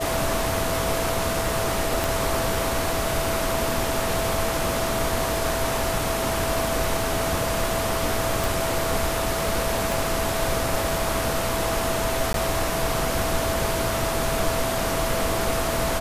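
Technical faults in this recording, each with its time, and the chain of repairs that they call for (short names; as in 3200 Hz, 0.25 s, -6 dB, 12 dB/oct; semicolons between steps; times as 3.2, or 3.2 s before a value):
tone 660 Hz -28 dBFS
2.04 pop
8.44 pop
9.92 pop
12.33–12.34 gap 12 ms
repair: de-click; notch 660 Hz, Q 30; interpolate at 12.33, 12 ms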